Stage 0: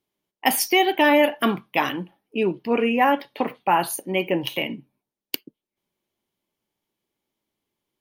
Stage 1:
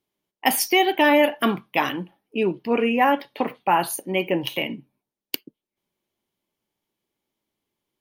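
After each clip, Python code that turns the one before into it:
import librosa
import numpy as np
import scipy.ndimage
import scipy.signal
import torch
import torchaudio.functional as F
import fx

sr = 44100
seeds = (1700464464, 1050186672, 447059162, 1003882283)

y = x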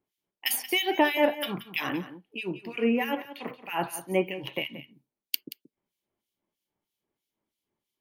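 y = fx.harmonic_tremolo(x, sr, hz=3.1, depth_pct=100, crossover_hz=2200.0)
y = y + 10.0 ** (-14.0 / 20.0) * np.pad(y, (int(178 * sr / 1000.0), 0))[:len(y)]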